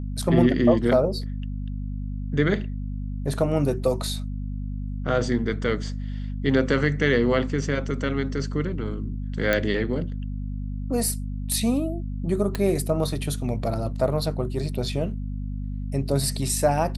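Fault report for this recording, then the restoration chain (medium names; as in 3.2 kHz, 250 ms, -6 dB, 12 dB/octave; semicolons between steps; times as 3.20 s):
hum 50 Hz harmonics 5 -30 dBFS
9.53 s: pop -8 dBFS
12.55 s: pop -13 dBFS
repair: de-click; de-hum 50 Hz, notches 5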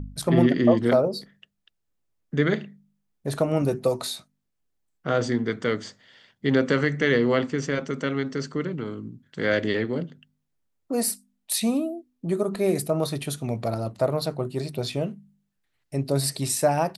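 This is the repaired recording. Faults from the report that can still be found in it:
nothing left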